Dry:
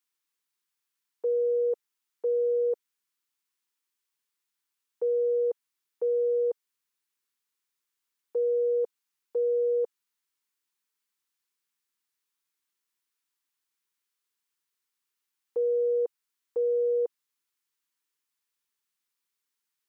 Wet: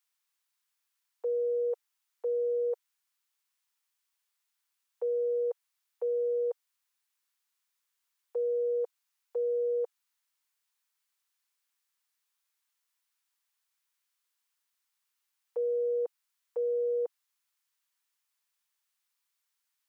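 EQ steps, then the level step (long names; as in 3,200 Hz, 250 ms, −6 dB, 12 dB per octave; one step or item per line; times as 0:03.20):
high-pass filter 550 Hz 24 dB per octave
+2.0 dB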